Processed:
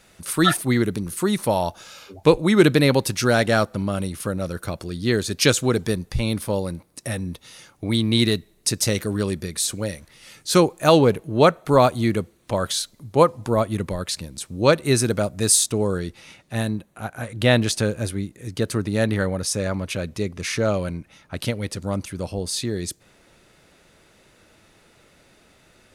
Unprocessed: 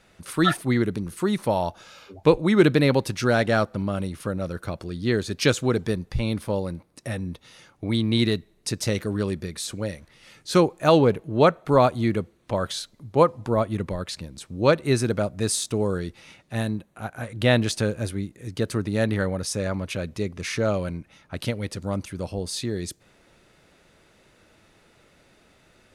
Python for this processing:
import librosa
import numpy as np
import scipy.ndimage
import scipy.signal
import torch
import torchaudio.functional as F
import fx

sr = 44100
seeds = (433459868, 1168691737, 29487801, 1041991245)

y = fx.high_shelf(x, sr, hz=5800.0, db=fx.steps((0.0, 11.5), (15.65, 5.0)))
y = F.gain(torch.from_numpy(y), 2.0).numpy()